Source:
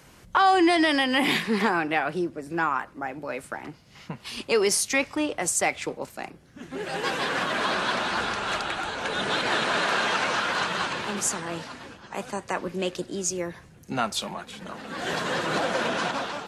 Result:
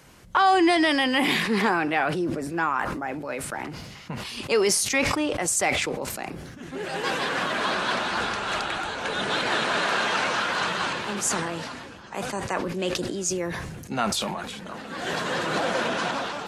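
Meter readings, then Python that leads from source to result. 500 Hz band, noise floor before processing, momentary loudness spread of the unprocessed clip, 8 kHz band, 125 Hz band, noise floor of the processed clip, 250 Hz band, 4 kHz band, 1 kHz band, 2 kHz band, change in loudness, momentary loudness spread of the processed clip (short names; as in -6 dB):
+1.0 dB, -52 dBFS, 15 LU, +1.5 dB, +3.0 dB, -42 dBFS, +1.0 dB, +1.0 dB, +0.5 dB, +1.0 dB, +0.5 dB, 14 LU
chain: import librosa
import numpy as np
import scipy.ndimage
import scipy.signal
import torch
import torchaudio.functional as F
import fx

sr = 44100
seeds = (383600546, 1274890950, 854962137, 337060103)

y = fx.sustainer(x, sr, db_per_s=31.0)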